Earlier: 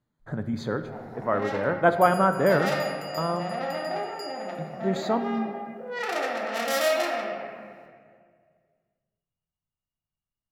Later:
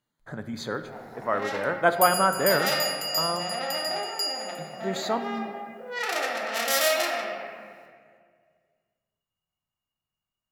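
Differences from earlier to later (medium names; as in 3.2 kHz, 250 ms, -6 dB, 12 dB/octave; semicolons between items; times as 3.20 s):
first sound +7.5 dB; master: add tilt EQ +2.5 dB/octave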